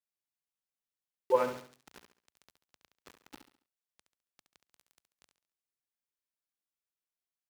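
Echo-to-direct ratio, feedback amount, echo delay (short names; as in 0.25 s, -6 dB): -8.5 dB, 38%, 69 ms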